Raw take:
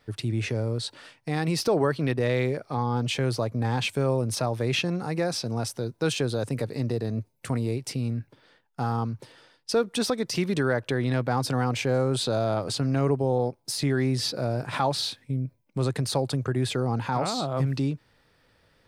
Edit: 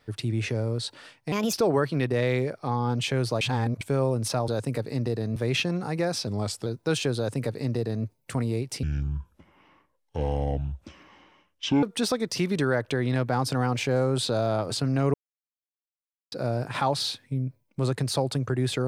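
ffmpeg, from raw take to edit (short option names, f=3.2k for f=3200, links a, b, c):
-filter_complex "[0:a]asplit=13[a][b][c][d][e][f][g][h][i][j][k][l][m];[a]atrim=end=1.324[n];[b]atrim=start=1.32:end=1.6,asetpts=PTS-STARTPTS,asetrate=58653,aresample=44100,atrim=end_sample=9284,asetpts=PTS-STARTPTS[o];[c]atrim=start=1.596:end=3.482[p];[d]atrim=start=3.478:end=3.882,asetpts=PTS-STARTPTS,areverse[q];[e]atrim=start=3.878:end=4.552[r];[f]atrim=start=6.318:end=7.202[s];[g]atrim=start=4.548:end=5.464[t];[h]atrim=start=5.46:end=5.81,asetpts=PTS-STARTPTS,asetrate=39690,aresample=44100[u];[i]atrim=start=5.806:end=7.984[v];[j]atrim=start=7.98:end=9.81,asetpts=PTS-STARTPTS,asetrate=26901,aresample=44100[w];[k]atrim=start=9.806:end=13.12,asetpts=PTS-STARTPTS,afade=t=out:st=3.31:d=0.004:c=hsin[x];[l]atrim=start=13.12:end=14.3,asetpts=PTS-STARTPTS,volume=0[y];[m]atrim=start=14.3,asetpts=PTS-STARTPTS,afade=t=in:d=0.004:c=hsin[z];[n][o]acrossfade=d=0.004:c1=hsin:c2=hsin[aa];[aa][p]acrossfade=d=0.004:c1=hsin:c2=hsin[ab];[ab][q]acrossfade=d=0.004:c1=hsin:c2=hsin[ac];[ac][r]acrossfade=d=0.004:c1=hsin:c2=hsin[ad];[ad][s]acrossfade=d=0.004:c1=hsin:c2=hsin[ae];[ae][t]acrossfade=d=0.004:c1=hsin:c2=hsin[af];[af][u]acrossfade=d=0.004:c1=hsin:c2=hsin[ag];[ag][v]acrossfade=d=0.004:c1=hsin:c2=hsin[ah];[ah][w]acrossfade=d=0.004:c1=hsin:c2=hsin[ai];[x][y][z]concat=n=3:v=0:a=1[aj];[ai][aj]acrossfade=d=0.004:c1=hsin:c2=hsin"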